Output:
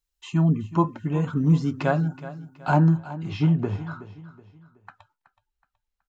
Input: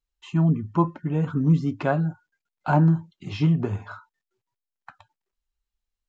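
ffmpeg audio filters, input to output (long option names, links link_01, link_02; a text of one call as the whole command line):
ffmpeg -i in.wav -af "asetnsamples=nb_out_samples=441:pad=0,asendcmd='2.97 highshelf g -4.5',highshelf=frequency=4000:gain=8.5,aecho=1:1:373|746|1119:0.168|0.0638|0.0242" out.wav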